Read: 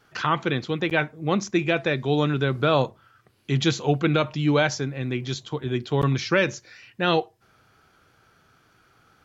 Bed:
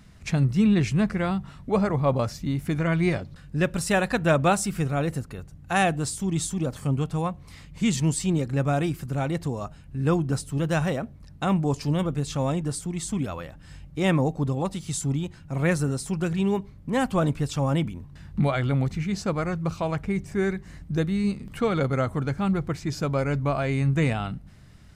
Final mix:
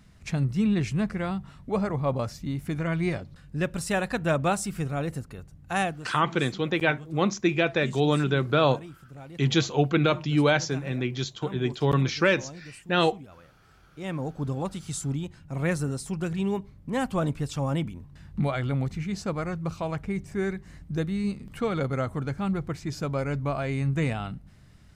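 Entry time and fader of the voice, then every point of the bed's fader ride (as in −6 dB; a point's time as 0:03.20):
5.90 s, −1.0 dB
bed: 0:05.81 −4 dB
0:06.11 −17 dB
0:13.79 −17 dB
0:14.50 −3.5 dB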